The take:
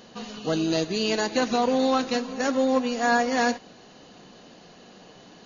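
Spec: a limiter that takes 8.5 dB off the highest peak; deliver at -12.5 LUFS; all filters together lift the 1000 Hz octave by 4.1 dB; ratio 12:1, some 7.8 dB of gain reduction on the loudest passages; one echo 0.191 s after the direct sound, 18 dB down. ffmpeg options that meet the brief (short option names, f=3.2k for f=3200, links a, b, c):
-af "equalizer=f=1k:t=o:g=6,acompressor=threshold=-23dB:ratio=12,alimiter=limit=-23dB:level=0:latency=1,aecho=1:1:191:0.126,volume=19.5dB"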